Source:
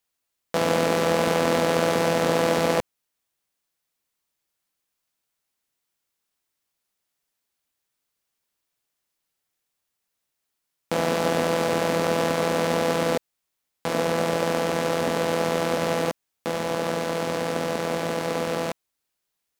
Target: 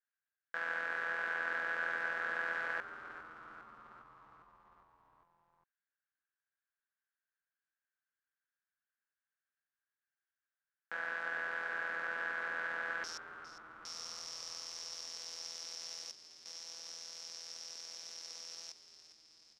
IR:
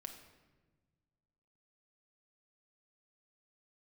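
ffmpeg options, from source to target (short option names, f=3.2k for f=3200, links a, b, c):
-filter_complex "[0:a]asetnsamples=n=441:p=0,asendcmd='13.04 bandpass f 5500',bandpass=f=1.6k:t=q:w=12:csg=0,asplit=8[a][b][c][d][e][f][g][h];[b]adelay=405,afreqshift=-92,volume=-13dB[i];[c]adelay=810,afreqshift=-184,volume=-16.9dB[j];[d]adelay=1215,afreqshift=-276,volume=-20.8dB[k];[e]adelay=1620,afreqshift=-368,volume=-24.6dB[l];[f]adelay=2025,afreqshift=-460,volume=-28.5dB[m];[g]adelay=2430,afreqshift=-552,volume=-32.4dB[n];[h]adelay=2835,afreqshift=-644,volume=-36.3dB[o];[a][i][j][k][l][m][n][o]amix=inputs=8:normalize=0,volume=3dB"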